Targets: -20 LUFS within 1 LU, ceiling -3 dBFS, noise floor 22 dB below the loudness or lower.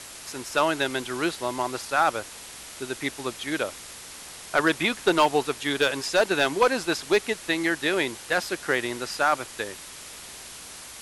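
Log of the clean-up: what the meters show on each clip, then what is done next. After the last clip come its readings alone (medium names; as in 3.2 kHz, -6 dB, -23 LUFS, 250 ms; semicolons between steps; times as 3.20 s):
clipped samples 0.3%; clipping level -12.0 dBFS; noise floor -42 dBFS; noise floor target -48 dBFS; loudness -25.5 LUFS; peak level -12.0 dBFS; loudness target -20.0 LUFS
-> clip repair -12 dBFS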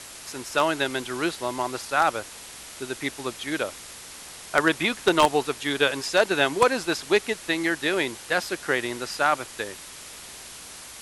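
clipped samples 0.0%; noise floor -42 dBFS; noise floor target -47 dBFS
-> noise print and reduce 6 dB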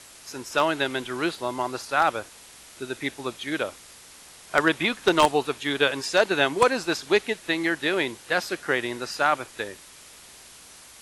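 noise floor -48 dBFS; loudness -25.0 LUFS; peak level -3.0 dBFS; loudness target -20.0 LUFS
-> trim +5 dB; peak limiter -3 dBFS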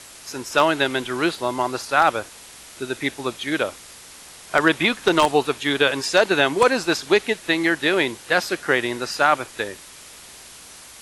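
loudness -20.5 LUFS; peak level -3.0 dBFS; noise floor -43 dBFS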